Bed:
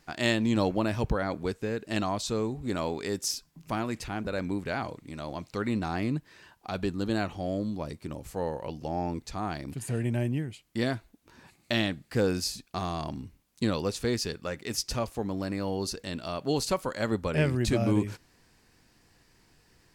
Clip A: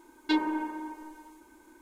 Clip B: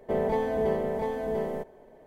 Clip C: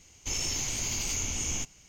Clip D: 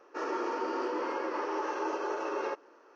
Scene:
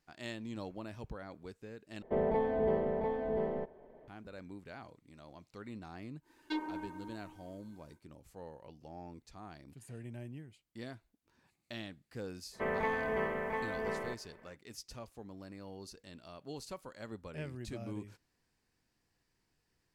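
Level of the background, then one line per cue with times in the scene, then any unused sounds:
bed -17 dB
2.02 replace with B -3.5 dB + air absorption 300 m
6.21 add A -10.5 dB, fades 0.10 s
12.51 add B -9 dB, fades 0.05 s + band shelf 1700 Hz +15 dB
not used: C, D

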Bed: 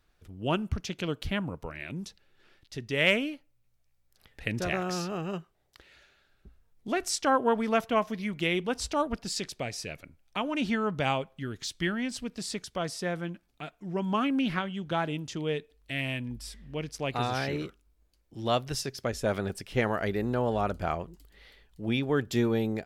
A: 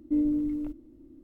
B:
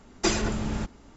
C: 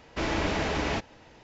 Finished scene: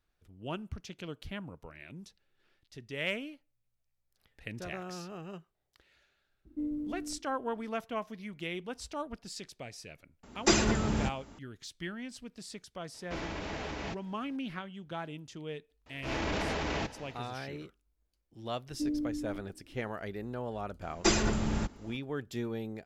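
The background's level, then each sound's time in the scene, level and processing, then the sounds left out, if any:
bed -10 dB
6.46 add A -10 dB
10.23 add B + HPF 42 Hz
12.94 add C -9.5 dB + limiter -18.5 dBFS
15.86 add C -5 dB + transient shaper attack -8 dB, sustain +9 dB
18.69 add A -7.5 dB
20.81 add B -1.5 dB

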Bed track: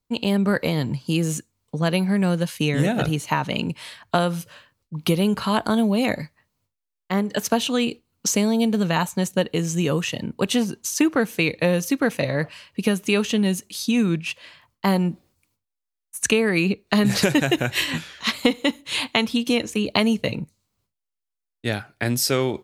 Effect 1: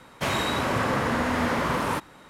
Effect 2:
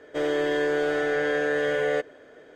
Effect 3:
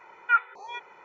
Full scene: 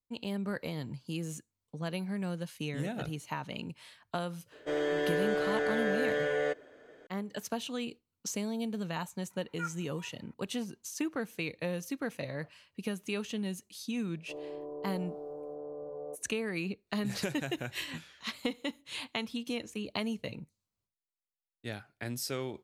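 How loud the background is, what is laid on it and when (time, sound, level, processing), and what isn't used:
bed track -15 dB
4.52 add 2 -6 dB
9.3 add 3 -17 dB
14.14 add 2 -16.5 dB + steep low-pass 1100 Hz 72 dB/oct
not used: 1

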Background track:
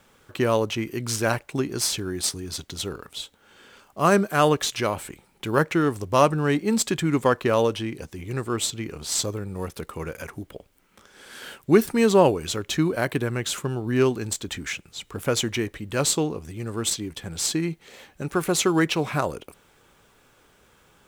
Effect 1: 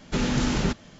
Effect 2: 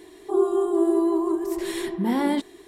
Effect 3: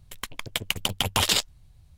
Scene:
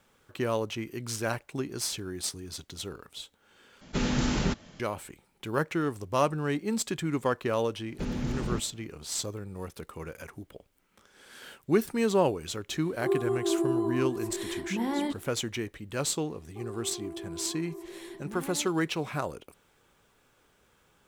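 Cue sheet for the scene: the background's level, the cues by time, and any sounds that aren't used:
background track -7.5 dB
3.81 replace with 1 -3 dB + attack slew limiter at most 590 dB/s
7.87 add 1 -11 dB + tilt shelf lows +4.5 dB, about 770 Hz
12.72 add 2 -7 dB
16.27 add 2 -15 dB + compressor, threshold -22 dBFS
not used: 3

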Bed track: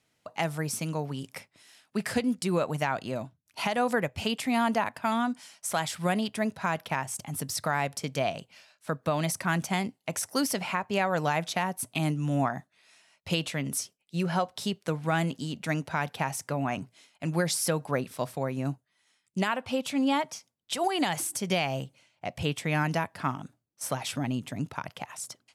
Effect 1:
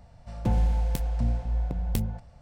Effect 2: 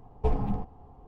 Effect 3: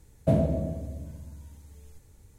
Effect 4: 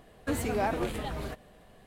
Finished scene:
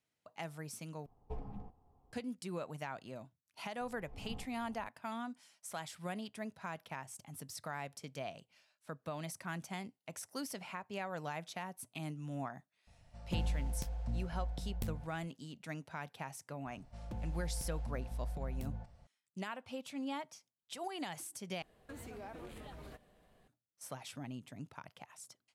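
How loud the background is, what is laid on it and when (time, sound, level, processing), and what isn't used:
bed track -14.5 dB
1.06 replace with 2 -17.5 dB
3.81 add 2 -8.5 dB + auto swell 0.698 s
12.87 add 1 -12 dB
16.66 add 1 -9.5 dB + limiter -25 dBFS
21.62 replace with 4 -11.5 dB + compressor 3:1, threshold -35 dBFS
not used: 3

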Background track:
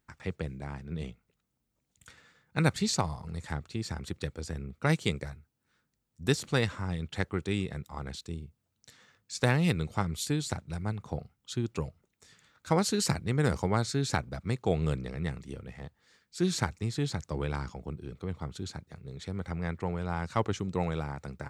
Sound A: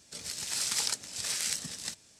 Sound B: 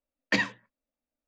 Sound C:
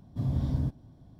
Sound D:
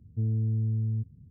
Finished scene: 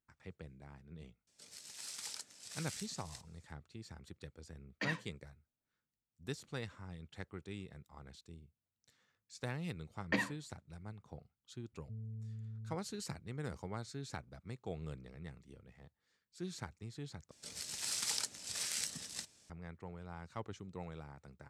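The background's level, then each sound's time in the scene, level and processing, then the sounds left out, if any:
background track -15.5 dB
1.27 add A -15 dB + low shelf 120 Hz -10.5 dB
4.49 add B -9.5 dB + limiter -19 dBFS
9.8 add B -6 dB + LPF 1600 Hz 6 dB/oct
11.72 add D -18 dB + notch 330 Hz, Q 8.8
17.31 replace with A -6.5 dB
not used: C

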